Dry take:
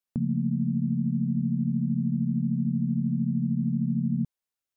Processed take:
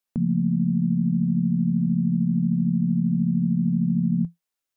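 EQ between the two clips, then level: bell 99 Hz -7.5 dB 1.3 oct; dynamic EQ 170 Hz, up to +8 dB, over -48 dBFS, Q 7.6; +4.0 dB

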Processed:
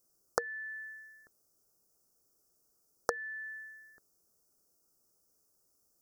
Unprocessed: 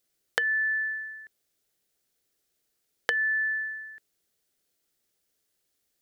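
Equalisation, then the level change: Chebyshev band-stop 1300–5300 Hz, order 3; +4.0 dB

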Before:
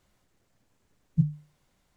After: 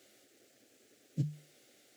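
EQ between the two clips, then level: HPF 160 Hz 24 dB/oct; fixed phaser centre 410 Hz, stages 4; +11.5 dB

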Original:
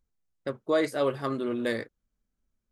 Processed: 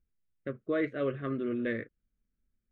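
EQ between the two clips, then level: LPF 4400 Hz 12 dB/oct; air absorption 260 m; fixed phaser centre 2100 Hz, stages 4; 0.0 dB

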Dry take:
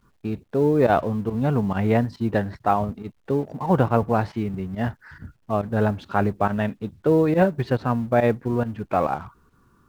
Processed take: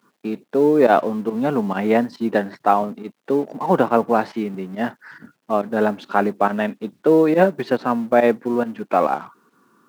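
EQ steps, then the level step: HPF 210 Hz 24 dB/oct; +4.5 dB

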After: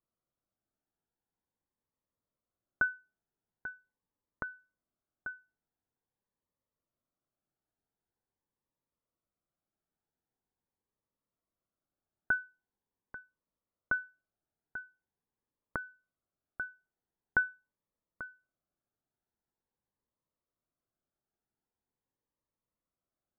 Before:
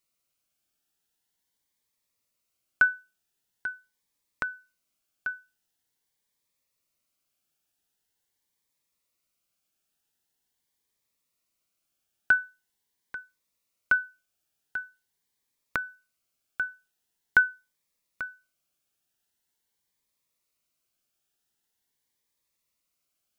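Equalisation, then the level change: running mean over 17 samples; air absorption 460 m; 0.0 dB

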